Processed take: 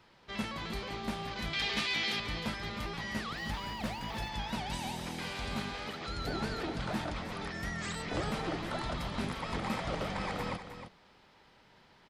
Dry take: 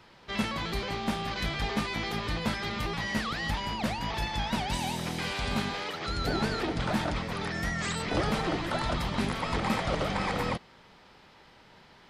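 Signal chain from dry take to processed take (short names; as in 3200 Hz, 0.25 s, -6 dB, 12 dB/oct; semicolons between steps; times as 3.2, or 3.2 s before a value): 1.53–2.2 weighting filter D; 3.37–4.29 sample gate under -46 dBFS; echo 0.311 s -10 dB; gain -6.5 dB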